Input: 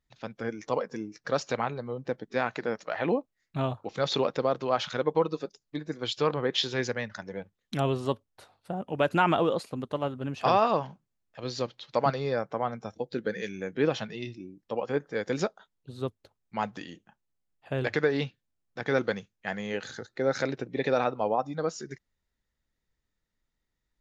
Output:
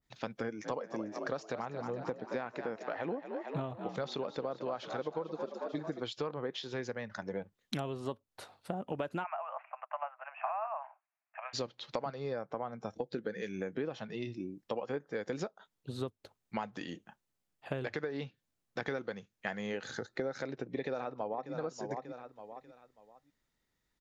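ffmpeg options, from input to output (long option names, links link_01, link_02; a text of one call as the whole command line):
ffmpeg -i in.wav -filter_complex "[0:a]asplit=3[link_01][link_02][link_03];[link_01]afade=type=out:start_time=0.64:duration=0.02[link_04];[link_02]asplit=7[link_05][link_06][link_07][link_08][link_09][link_10][link_11];[link_06]adelay=223,afreqshift=54,volume=-12dB[link_12];[link_07]adelay=446,afreqshift=108,volume=-16.9dB[link_13];[link_08]adelay=669,afreqshift=162,volume=-21.8dB[link_14];[link_09]adelay=892,afreqshift=216,volume=-26.6dB[link_15];[link_10]adelay=1115,afreqshift=270,volume=-31.5dB[link_16];[link_11]adelay=1338,afreqshift=324,volume=-36.4dB[link_17];[link_05][link_12][link_13][link_14][link_15][link_16][link_17]amix=inputs=7:normalize=0,afade=type=in:start_time=0.64:duration=0.02,afade=type=out:start_time=5.99:duration=0.02[link_18];[link_03]afade=type=in:start_time=5.99:duration=0.02[link_19];[link_04][link_18][link_19]amix=inputs=3:normalize=0,asplit=3[link_20][link_21][link_22];[link_20]afade=type=out:start_time=9.23:duration=0.02[link_23];[link_21]asuperpass=centerf=1300:order=20:qfactor=0.64,afade=type=in:start_time=9.23:duration=0.02,afade=type=out:start_time=11.53:duration=0.02[link_24];[link_22]afade=type=in:start_time=11.53:duration=0.02[link_25];[link_23][link_24][link_25]amix=inputs=3:normalize=0,asplit=2[link_26][link_27];[link_27]afade=type=in:start_time=20.35:duration=0.01,afade=type=out:start_time=21.53:duration=0.01,aecho=0:1:590|1180|1770:0.211349|0.0528372|0.0132093[link_28];[link_26][link_28]amix=inputs=2:normalize=0,lowshelf=frequency=67:gain=-11,acompressor=threshold=-37dB:ratio=12,adynamicequalizer=threshold=0.00158:dfrequency=1600:dqfactor=0.7:tfrequency=1600:tqfactor=0.7:attack=5:release=100:ratio=0.375:range=3:mode=cutabove:tftype=highshelf,volume=4dB" out.wav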